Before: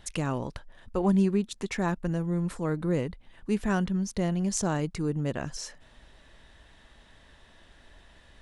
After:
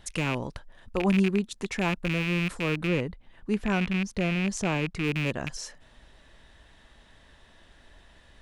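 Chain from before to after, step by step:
loose part that buzzes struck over −33 dBFS, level −20 dBFS
0:02.87–0:05.04: high-shelf EQ 5,300 Hz −8.5 dB

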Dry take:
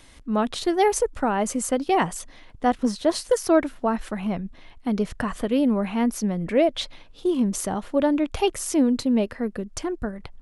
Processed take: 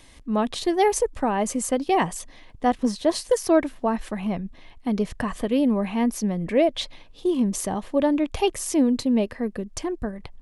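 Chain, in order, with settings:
notch filter 1,400 Hz, Q 6.2

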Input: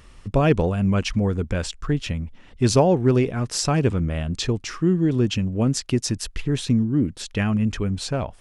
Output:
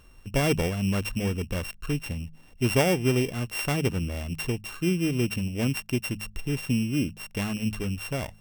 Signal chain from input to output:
samples sorted by size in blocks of 16 samples
notch filter 4,700 Hz, Q 13
hum removal 52.67 Hz, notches 4
level −5.5 dB

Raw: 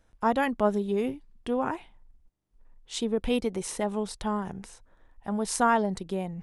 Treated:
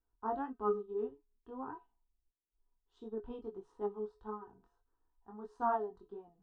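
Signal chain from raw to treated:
low-pass filter 1,500 Hz 12 dB per octave
phaser with its sweep stopped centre 590 Hz, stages 6
tuned comb filter 140 Hz, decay 0.29 s, harmonics odd, mix 80%
chorus effect 1.6 Hz, delay 18 ms, depth 5.2 ms
expander for the loud parts 1.5 to 1, over −56 dBFS
level +7 dB

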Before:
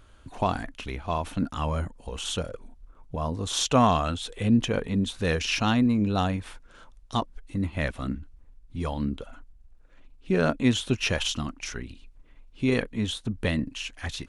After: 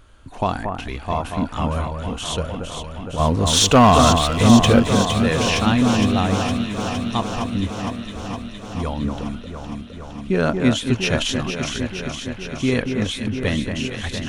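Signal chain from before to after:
0:03.19–0:04.80: leveller curve on the samples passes 2
0:07.71–0:08.15: tuned comb filter 120 Hz, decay 1.5 s, mix 90%
delay that swaps between a low-pass and a high-pass 231 ms, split 2,000 Hz, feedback 86%, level −5.5 dB
level +4 dB

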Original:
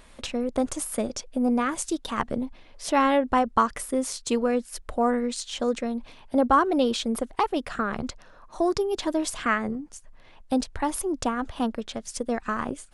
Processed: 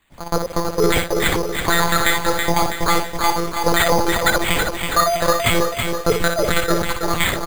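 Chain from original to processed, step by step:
spike at every zero crossing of −18.5 dBFS
noise reduction from a noise print of the clip's start 16 dB
dynamic equaliser 420 Hz, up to −6 dB, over −38 dBFS, Q 2
automatic gain control gain up to 10 dB
in parallel at −7 dB: bit reduction 5 bits
on the sum: soft clipping −8.5 dBFS, distortion −14 dB
single-tap delay 106 ms −7 dB
wrong playback speed 45 rpm record played at 78 rpm
one-pitch LPC vocoder at 8 kHz 170 Hz
bad sample-rate conversion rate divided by 8×, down filtered, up hold
boost into a limiter +2.5 dB
feedback echo at a low word length 326 ms, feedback 55%, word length 6 bits, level −5 dB
level −2.5 dB

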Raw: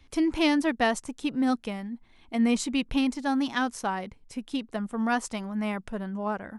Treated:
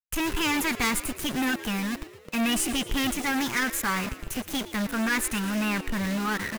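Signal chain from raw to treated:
parametric band 370 Hz −13 dB 1.9 octaves
phaser with its sweep stopped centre 1,500 Hz, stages 4
centre clipping without the shift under −49 dBFS
power curve on the samples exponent 0.35
formants moved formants +3 semitones
on a send: echo with shifted repeats 115 ms, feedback 56%, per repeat +76 Hz, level −15.5 dB

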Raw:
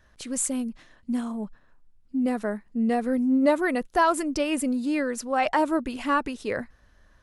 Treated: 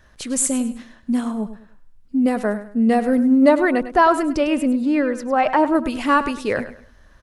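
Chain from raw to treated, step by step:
0:03.48–0:05.74: low-pass filter 3,100 Hz → 1,400 Hz 6 dB per octave
repeating echo 102 ms, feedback 30%, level −13 dB
level +7 dB

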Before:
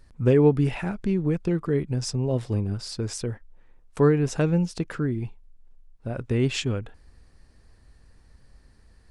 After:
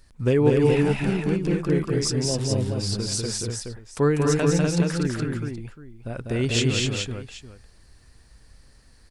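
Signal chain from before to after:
high-shelf EQ 2,200 Hz +9 dB
on a send: multi-tap delay 196/248/422/776 ms −3.5/−4/−5/−17 dB
on the sum: level −2 dB

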